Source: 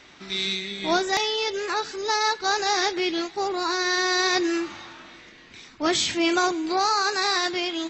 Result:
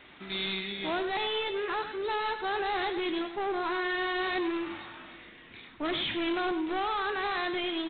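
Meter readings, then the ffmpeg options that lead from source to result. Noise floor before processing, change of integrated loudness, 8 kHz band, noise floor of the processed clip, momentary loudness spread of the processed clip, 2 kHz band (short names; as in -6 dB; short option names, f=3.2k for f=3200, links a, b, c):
-50 dBFS, -7.5 dB, under -40 dB, -52 dBFS, 11 LU, -7.0 dB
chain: -af "aresample=8000,asoftclip=type=hard:threshold=-26.5dB,aresample=44100,aecho=1:1:99:0.299,volume=-2.5dB"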